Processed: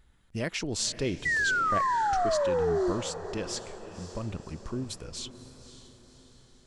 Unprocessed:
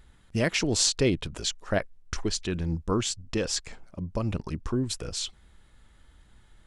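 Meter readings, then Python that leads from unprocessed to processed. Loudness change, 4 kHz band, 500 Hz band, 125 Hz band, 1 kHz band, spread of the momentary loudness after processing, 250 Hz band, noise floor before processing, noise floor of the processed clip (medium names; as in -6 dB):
-0.5 dB, -6.0 dB, +1.5 dB, -6.5 dB, +11.5 dB, 16 LU, -5.0 dB, -57 dBFS, -60 dBFS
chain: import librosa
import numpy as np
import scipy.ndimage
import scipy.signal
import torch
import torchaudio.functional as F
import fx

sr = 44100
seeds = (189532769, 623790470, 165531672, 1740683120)

y = fx.spec_paint(x, sr, seeds[0], shape='fall', start_s=1.25, length_s=1.67, low_hz=340.0, high_hz=2000.0, level_db=-20.0)
y = fx.echo_diffused(y, sr, ms=547, feedback_pct=49, wet_db=-13)
y = F.gain(torch.from_numpy(y), -6.5).numpy()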